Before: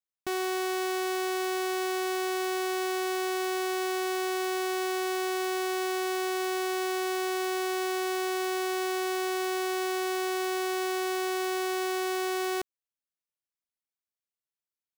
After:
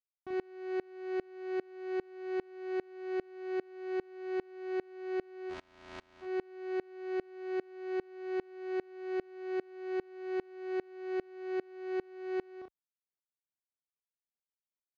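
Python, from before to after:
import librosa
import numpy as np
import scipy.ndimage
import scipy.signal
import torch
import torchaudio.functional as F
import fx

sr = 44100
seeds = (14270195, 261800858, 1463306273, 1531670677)

y = fx.spec_flatten(x, sr, power=0.11, at=(5.49, 6.21), fade=0.02)
y = scipy.signal.sosfilt(scipy.signal.butter(2, 45.0, 'highpass', fs=sr, output='sos'), y)
y = fx.spacing_loss(y, sr, db_at_10k=44)
y = fx.room_early_taps(y, sr, ms=(38, 65), db=(-4.0, -11.5))
y = fx.tremolo_decay(y, sr, direction='swelling', hz=2.5, depth_db=29)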